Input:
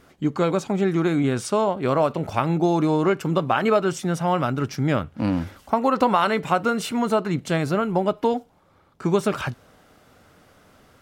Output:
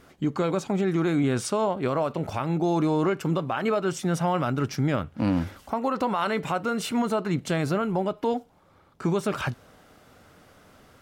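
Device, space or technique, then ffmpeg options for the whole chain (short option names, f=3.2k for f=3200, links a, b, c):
stacked limiters: -af "alimiter=limit=-13dB:level=0:latency=1:release=398,alimiter=limit=-16dB:level=0:latency=1:release=14"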